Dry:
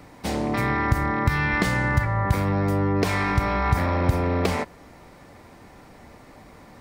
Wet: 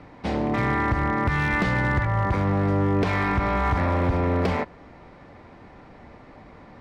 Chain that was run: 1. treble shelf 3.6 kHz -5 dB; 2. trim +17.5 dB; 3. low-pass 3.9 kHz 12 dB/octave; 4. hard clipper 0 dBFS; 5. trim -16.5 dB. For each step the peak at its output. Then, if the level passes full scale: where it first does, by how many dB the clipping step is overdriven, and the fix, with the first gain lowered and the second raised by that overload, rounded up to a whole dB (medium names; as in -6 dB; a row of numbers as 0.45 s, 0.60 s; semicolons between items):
-9.0 dBFS, +8.5 dBFS, +8.5 dBFS, 0.0 dBFS, -16.5 dBFS; step 2, 8.5 dB; step 2 +8.5 dB, step 5 -7.5 dB